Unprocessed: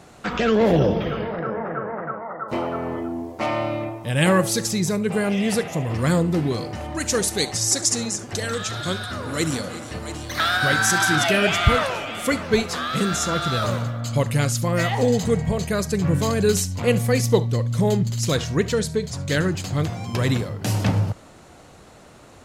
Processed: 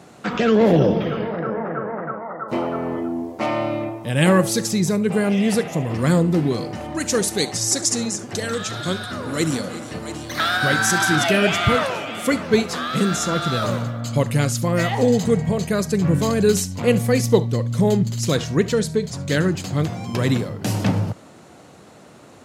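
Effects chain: HPF 160 Hz 12 dB/oct; low shelf 320 Hz +7 dB

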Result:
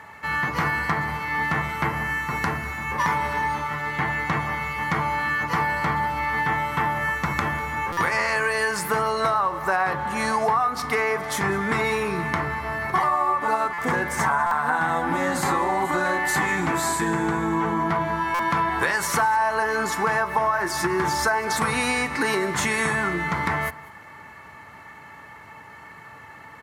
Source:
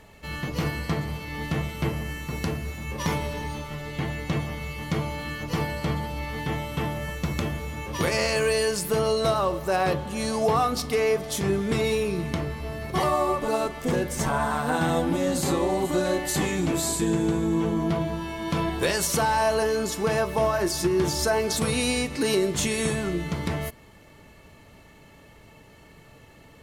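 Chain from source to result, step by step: HPF 72 Hz 24 dB/oct; band shelf 1300 Hz +14.5 dB; compressor 6:1, threshold -19 dBFS, peak gain reduction 11.5 dB; echo 0.197 s -21 dB; stuck buffer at 7.92/13.73/14.46/18.34, samples 256, times 8

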